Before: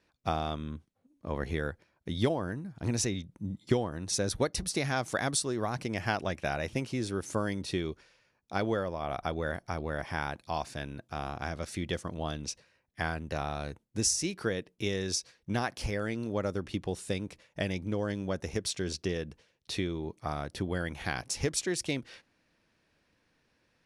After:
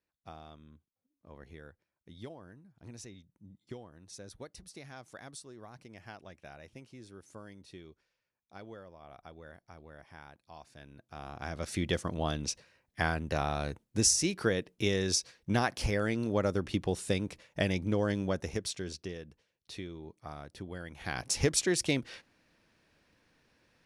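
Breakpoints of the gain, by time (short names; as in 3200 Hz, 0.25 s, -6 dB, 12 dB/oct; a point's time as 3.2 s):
10.57 s -17.5 dB
11.29 s -7 dB
11.75 s +2.5 dB
18.2 s +2.5 dB
19.21 s -9.5 dB
20.9 s -9.5 dB
21.3 s +3 dB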